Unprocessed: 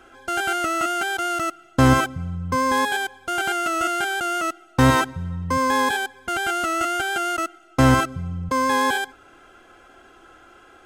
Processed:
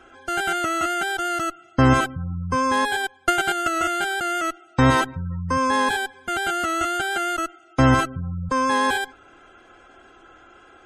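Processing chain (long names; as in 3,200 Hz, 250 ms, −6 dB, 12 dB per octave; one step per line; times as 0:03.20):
harmonic generator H 3 −21 dB, 5 −22 dB, 7 −35 dB, 8 −26 dB, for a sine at −5.5 dBFS
gate on every frequency bin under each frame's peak −30 dB strong
0:03.03–0:03.82: transient designer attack +10 dB, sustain −7 dB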